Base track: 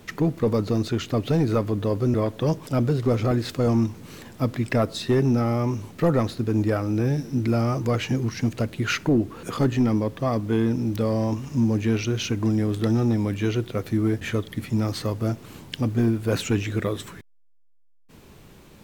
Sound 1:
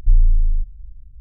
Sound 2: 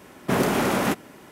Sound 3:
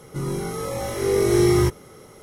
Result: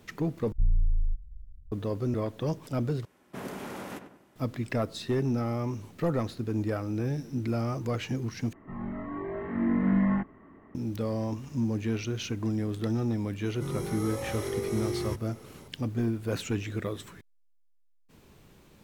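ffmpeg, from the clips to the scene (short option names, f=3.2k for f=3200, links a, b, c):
-filter_complex "[3:a]asplit=2[a][b];[0:a]volume=-7.5dB[c];[1:a]asoftclip=type=tanh:threshold=-10dB[d];[2:a]asplit=2[e][f];[f]adelay=96,lowpass=f=2k:p=1,volume=-8dB,asplit=2[g][h];[h]adelay=96,lowpass=f=2k:p=1,volume=0.44,asplit=2[i][j];[j]adelay=96,lowpass=f=2k:p=1,volume=0.44,asplit=2[k][l];[l]adelay=96,lowpass=f=2k:p=1,volume=0.44,asplit=2[m][n];[n]adelay=96,lowpass=f=2k:p=1,volume=0.44[o];[e][g][i][k][m][o]amix=inputs=6:normalize=0[p];[a]highpass=f=220:t=q:w=0.5412,highpass=f=220:t=q:w=1.307,lowpass=f=2.3k:t=q:w=0.5176,lowpass=f=2.3k:t=q:w=0.7071,lowpass=f=2.3k:t=q:w=1.932,afreqshift=-160[q];[b]alimiter=limit=-17dB:level=0:latency=1:release=302[r];[c]asplit=4[s][t][u][v];[s]atrim=end=0.524[w];[d]atrim=end=1.2,asetpts=PTS-STARTPTS,volume=-8dB[x];[t]atrim=start=1.716:end=3.054[y];[p]atrim=end=1.31,asetpts=PTS-STARTPTS,volume=-17.5dB[z];[u]atrim=start=4.356:end=8.534[aa];[q]atrim=end=2.22,asetpts=PTS-STARTPTS,volume=-6dB[ab];[v]atrim=start=10.746[ac];[r]atrim=end=2.22,asetpts=PTS-STARTPTS,volume=-7dB,afade=t=in:d=0.004:c=hsin,afade=t=out:st=2.216:d=0.004:c=hsin,adelay=13460[ad];[w][x]acrossfade=d=0.004:c1=hsin:c2=hsin[ae];[ae][y]acrossfade=d=0.004:c1=hsin:c2=hsin[af];[af][z]acrossfade=d=0.004:c1=hsin:c2=hsin[ag];[ag][aa]acrossfade=d=0.004:c1=hsin:c2=hsin[ah];[ah][ab]acrossfade=d=0.004:c1=hsin:c2=hsin[ai];[ai][ac]acrossfade=d=0.004:c1=hsin:c2=hsin[aj];[aj][ad]amix=inputs=2:normalize=0"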